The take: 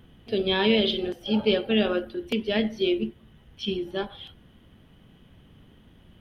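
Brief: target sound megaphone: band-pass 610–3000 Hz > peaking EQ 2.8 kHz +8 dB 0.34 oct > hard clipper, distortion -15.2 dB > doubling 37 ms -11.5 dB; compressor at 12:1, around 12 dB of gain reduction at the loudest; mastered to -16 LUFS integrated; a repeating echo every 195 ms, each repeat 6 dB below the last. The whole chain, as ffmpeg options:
-filter_complex "[0:a]acompressor=threshold=0.0355:ratio=12,highpass=610,lowpass=3000,equalizer=f=2800:t=o:w=0.34:g=8,aecho=1:1:195|390|585|780|975|1170:0.501|0.251|0.125|0.0626|0.0313|0.0157,asoftclip=type=hard:threshold=0.0316,asplit=2[s0][s1];[s1]adelay=37,volume=0.266[s2];[s0][s2]amix=inputs=2:normalize=0,volume=11.9"

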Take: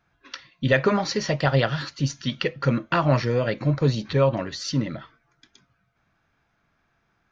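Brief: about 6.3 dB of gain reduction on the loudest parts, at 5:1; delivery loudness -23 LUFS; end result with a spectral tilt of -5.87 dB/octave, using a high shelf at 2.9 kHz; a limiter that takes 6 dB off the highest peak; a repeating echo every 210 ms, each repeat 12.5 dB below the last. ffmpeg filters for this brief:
-af "highshelf=f=2900:g=-8.5,acompressor=threshold=0.0794:ratio=5,alimiter=limit=0.119:level=0:latency=1,aecho=1:1:210|420|630:0.237|0.0569|0.0137,volume=2.24"

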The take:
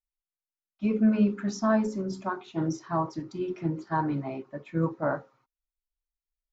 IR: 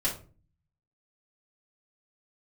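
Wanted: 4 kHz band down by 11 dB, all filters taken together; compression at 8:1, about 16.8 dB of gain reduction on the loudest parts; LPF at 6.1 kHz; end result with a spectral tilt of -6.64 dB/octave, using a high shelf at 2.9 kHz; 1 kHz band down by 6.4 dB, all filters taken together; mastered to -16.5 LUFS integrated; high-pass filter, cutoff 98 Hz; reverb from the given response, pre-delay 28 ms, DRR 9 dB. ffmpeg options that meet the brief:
-filter_complex "[0:a]highpass=98,lowpass=6100,equalizer=f=1000:t=o:g=-6.5,highshelf=f=2900:g=-7.5,equalizer=f=4000:t=o:g=-6.5,acompressor=threshold=0.0158:ratio=8,asplit=2[s0][s1];[1:a]atrim=start_sample=2205,adelay=28[s2];[s1][s2]afir=irnorm=-1:irlink=0,volume=0.15[s3];[s0][s3]amix=inputs=2:normalize=0,volume=15.8"

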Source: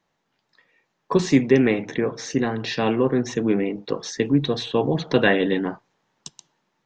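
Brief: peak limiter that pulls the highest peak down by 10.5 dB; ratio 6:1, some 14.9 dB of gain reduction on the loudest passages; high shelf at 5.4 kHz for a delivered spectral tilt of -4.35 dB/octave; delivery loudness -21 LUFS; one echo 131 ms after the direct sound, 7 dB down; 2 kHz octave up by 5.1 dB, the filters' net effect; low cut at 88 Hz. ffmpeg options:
-af "highpass=88,equalizer=f=2000:t=o:g=6.5,highshelf=f=5400:g=-3.5,acompressor=threshold=0.0447:ratio=6,alimiter=limit=0.075:level=0:latency=1,aecho=1:1:131:0.447,volume=3.76"

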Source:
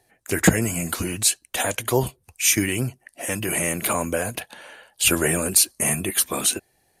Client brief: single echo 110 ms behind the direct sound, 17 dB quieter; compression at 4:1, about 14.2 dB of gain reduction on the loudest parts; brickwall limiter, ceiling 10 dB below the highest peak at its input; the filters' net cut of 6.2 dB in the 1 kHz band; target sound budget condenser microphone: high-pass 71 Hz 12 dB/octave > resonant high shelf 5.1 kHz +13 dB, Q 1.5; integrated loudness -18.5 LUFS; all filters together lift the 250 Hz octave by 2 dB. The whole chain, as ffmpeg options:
-af "equalizer=f=250:t=o:g=3.5,equalizer=f=1000:t=o:g=-8.5,acompressor=threshold=0.0447:ratio=4,alimiter=limit=0.0794:level=0:latency=1,highpass=71,highshelf=f=5100:t=q:w=1.5:g=13,aecho=1:1:110:0.141,volume=1.33"

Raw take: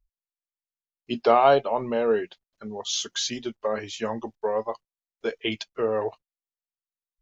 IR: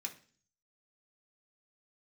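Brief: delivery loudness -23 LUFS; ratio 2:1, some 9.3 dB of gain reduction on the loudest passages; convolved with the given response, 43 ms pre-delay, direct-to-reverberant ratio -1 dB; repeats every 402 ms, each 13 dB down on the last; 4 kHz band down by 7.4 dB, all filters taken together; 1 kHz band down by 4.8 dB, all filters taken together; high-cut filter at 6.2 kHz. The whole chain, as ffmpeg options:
-filter_complex "[0:a]lowpass=6200,equalizer=f=1000:t=o:g=-7,equalizer=f=4000:t=o:g=-8.5,acompressor=threshold=0.0224:ratio=2,aecho=1:1:402|804|1206:0.224|0.0493|0.0108,asplit=2[s0][s1];[1:a]atrim=start_sample=2205,adelay=43[s2];[s1][s2]afir=irnorm=-1:irlink=0,volume=1.33[s3];[s0][s3]amix=inputs=2:normalize=0,volume=2.99"

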